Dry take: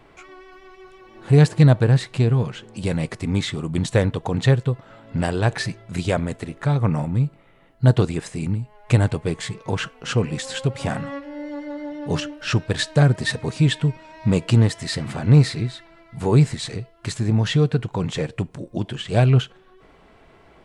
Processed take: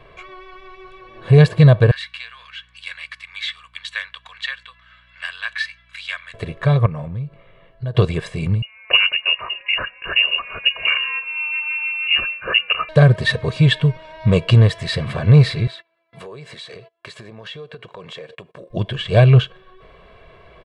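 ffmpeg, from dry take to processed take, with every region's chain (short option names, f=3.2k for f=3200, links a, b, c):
-filter_complex "[0:a]asettb=1/sr,asplit=3[a][b][c];[a]atrim=end=1.914[d];[b]atrim=start=1.91:end=6.34,asetpts=PTS-STARTPTS,afade=t=in:d=0.004:c=qsin,afade=t=out:st=4.426:d=0.004:c=qsin,highpass=f=1.5k:w=0.5412,highpass=f=1.5k:w=1.3066,highshelf=f=5.9k:g=-8.5,aeval=exprs='val(0)+0.000708*(sin(2*PI*60*n/s)+sin(2*PI*2*60*n/s)/2+sin(2*PI*3*60*n/s)/3+sin(2*PI*4*60*n/s)/4+sin(2*PI*5*60*n/s)/5)':c=same[e];[c]atrim=start=6.336[f];[d][e]acrossfade=d=0.004:c1=hsin:c2=qsin[g];[g][f]acrossfade=d=0.004:c1=qsin:c2=hsin,asettb=1/sr,asplit=3[h][i][j];[h]atrim=end=6.864[k];[i]atrim=start=6.86:end=7.95,asetpts=PTS-STARTPTS,afade=t=in:d=0.004:c=qsin,afade=t=out:st=1.086:d=0.004:c=qsin,highshelf=f=6.8k:g=-7.5,acompressor=threshold=-32dB:ratio=3:attack=3.2:release=140:knee=1:detection=peak[l];[j]atrim=start=7.946[m];[k][l]acrossfade=d=0.004:c1=hsin:c2=qsin[n];[n][m]acrossfade=d=0.004:c1=qsin:c2=hsin,asettb=1/sr,asplit=3[o][p][q];[o]atrim=end=8.624[r];[p]atrim=start=8.62:end=12.89,asetpts=PTS-STARTPTS,afade=t=in:d=0.004:c=qsin,afade=t=out:st=4.266:d=0.004:c=qsin,highpass=f=160:w=0.5412,highpass=f=160:w=1.3066,lowpass=f=2.6k:t=q:w=0.5098,lowpass=f=2.6k:t=q:w=0.6013,lowpass=f=2.6k:t=q:w=0.9,lowpass=f=2.6k:t=q:w=2.563,afreqshift=-3000[s];[q]atrim=start=12.886[t];[r][s]acrossfade=d=0.004:c1=hsin:c2=qsin[u];[u][t]acrossfade=d=0.004:c1=qsin:c2=hsin,asettb=1/sr,asplit=3[v][w][x];[v]atrim=end=15.674[y];[w]atrim=start=15.67:end=18.7,asetpts=PTS-STARTPTS,afade=t=in:d=0.004:c=qsin,afade=t=out:st=3.026:d=0.004:c=qsin,agate=range=-23dB:threshold=-44dB:ratio=16:release=100:detection=peak,highpass=310,acompressor=threshold=-37dB:ratio=8:attack=3.2:release=140:knee=1:detection=peak[z];[x]atrim=start=18.696[aa];[y][z]acrossfade=d=0.004:c1=hsin:c2=qsin[ab];[ab][aa]acrossfade=d=0.004:c1=qsin:c2=hsin,highshelf=f=4.8k:t=q:w=1.5:g=-9,aecho=1:1:1.8:0.7,alimiter=level_in=4dB:limit=-1dB:release=50:level=0:latency=1,volume=-1dB"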